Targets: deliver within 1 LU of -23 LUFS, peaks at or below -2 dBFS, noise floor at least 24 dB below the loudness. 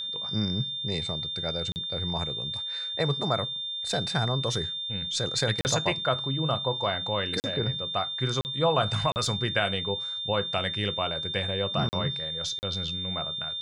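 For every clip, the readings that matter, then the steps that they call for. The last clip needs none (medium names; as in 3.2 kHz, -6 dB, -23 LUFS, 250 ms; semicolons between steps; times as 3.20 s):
dropouts 7; longest dropout 39 ms; steady tone 3.6 kHz; tone level -31 dBFS; loudness -28.0 LUFS; peak level -10.5 dBFS; loudness target -23.0 LUFS
-> interpolate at 1.72/5.61/7.40/8.41/9.12/11.89/12.59 s, 39 ms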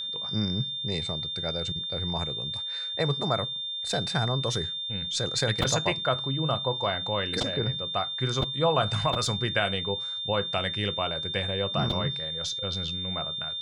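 dropouts 0; steady tone 3.6 kHz; tone level -31 dBFS
-> band-stop 3.6 kHz, Q 30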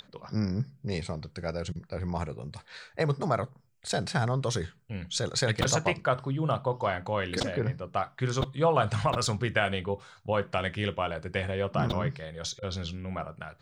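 steady tone not found; loudness -30.5 LUFS; peak level -10.0 dBFS; loudness target -23.0 LUFS
-> trim +7.5 dB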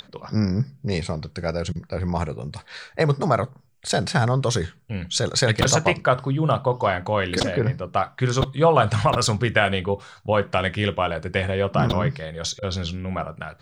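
loudness -23.0 LUFS; peak level -2.5 dBFS; noise floor -53 dBFS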